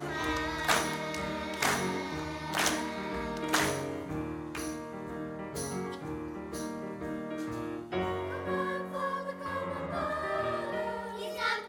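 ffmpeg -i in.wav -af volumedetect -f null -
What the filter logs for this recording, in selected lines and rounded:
mean_volume: -34.1 dB
max_volume: -9.9 dB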